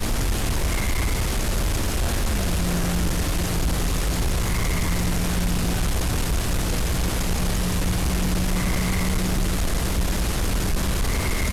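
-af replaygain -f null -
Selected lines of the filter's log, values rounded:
track_gain = +10.3 dB
track_peak = 0.099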